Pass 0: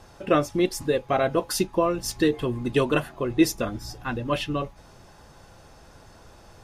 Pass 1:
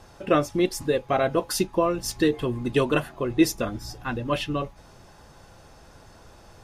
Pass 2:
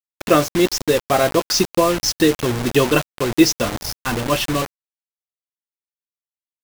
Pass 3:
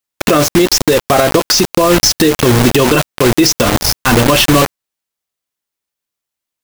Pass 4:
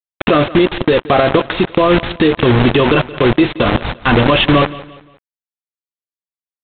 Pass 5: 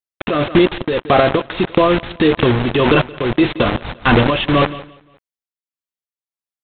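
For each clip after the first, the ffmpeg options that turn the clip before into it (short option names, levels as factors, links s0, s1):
-af anull
-af "highshelf=f=7900:t=q:w=3:g=-11.5,acrusher=bits=4:mix=0:aa=0.000001,volume=2"
-filter_complex "[0:a]asplit=2[s0][s1];[s1]aeval=exprs='(mod(7.5*val(0)+1,2)-1)/7.5':c=same,volume=0.266[s2];[s0][s2]amix=inputs=2:normalize=0,alimiter=level_in=4.47:limit=0.891:release=50:level=0:latency=1,volume=0.891"
-af "aresample=8000,acrusher=bits=3:mix=0:aa=0.000001,aresample=44100,aecho=1:1:174|348|522:0.126|0.0453|0.0163,volume=0.891"
-af "tremolo=f=1.7:d=0.58"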